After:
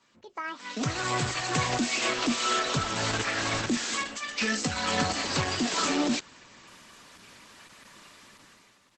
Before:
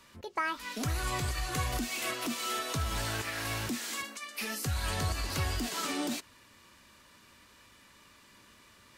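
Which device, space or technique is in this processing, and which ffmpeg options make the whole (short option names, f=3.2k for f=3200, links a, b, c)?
video call: -filter_complex "[0:a]asplit=3[a][b][c];[a]afade=t=out:st=4.23:d=0.02[d];[b]aecho=1:1:4:0.71,afade=t=in:st=4.23:d=0.02,afade=t=out:st=5.25:d=0.02[e];[c]afade=t=in:st=5.25:d=0.02[f];[d][e][f]amix=inputs=3:normalize=0,highpass=64,highpass=f=120:w=0.5412,highpass=f=120:w=1.3066,dynaudnorm=f=130:g=11:m=14.5dB,volume=-6dB" -ar 48000 -c:a libopus -b:a 12k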